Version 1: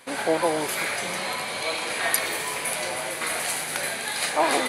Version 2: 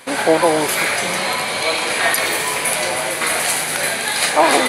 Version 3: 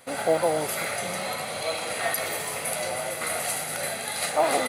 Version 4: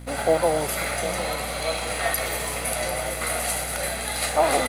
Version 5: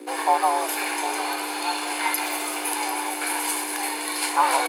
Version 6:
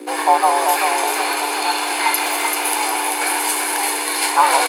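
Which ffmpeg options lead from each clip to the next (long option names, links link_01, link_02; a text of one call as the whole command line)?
ffmpeg -i in.wav -af "alimiter=level_in=10dB:limit=-1dB:release=50:level=0:latency=1,volume=-1dB" out.wav
ffmpeg -i in.wav -af "acrusher=bits=9:mode=log:mix=0:aa=0.000001,equalizer=frequency=2800:width=0.32:gain=-6,aecho=1:1:1.5:0.45,volume=-7.5dB" out.wav
ffmpeg -i in.wav -filter_complex "[0:a]aeval=exprs='val(0)+0.0112*(sin(2*PI*60*n/s)+sin(2*PI*2*60*n/s)/2+sin(2*PI*3*60*n/s)/3+sin(2*PI*4*60*n/s)/4+sin(2*PI*5*60*n/s)/5)':channel_layout=same,aeval=exprs='sgn(val(0))*max(abs(val(0))-0.00251,0)':channel_layout=same,asplit=2[link_01][link_02];[link_02]aecho=0:1:747:0.266[link_03];[link_01][link_03]amix=inputs=2:normalize=0,volume=2.5dB" out.wav
ffmpeg -i in.wav -af "afreqshift=240" out.wav
ffmpeg -i in.wav -af "aecho=1:1:388:0.596,volume=6dB" out.wav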